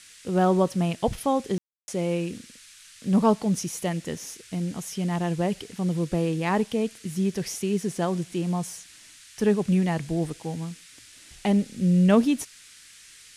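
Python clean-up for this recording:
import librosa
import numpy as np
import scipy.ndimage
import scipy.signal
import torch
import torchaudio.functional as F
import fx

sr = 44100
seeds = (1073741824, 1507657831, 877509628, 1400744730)

y = fx.fix_ambience(x, sr, seeds[0], print_start_s=12.45, print_end_s=12.95, start_s=1.58, end_s=1.88)
y = fx.noise_reduce(y, sr, print_start_s=12.45, print_end_s=12.95, reduce_db=19.0)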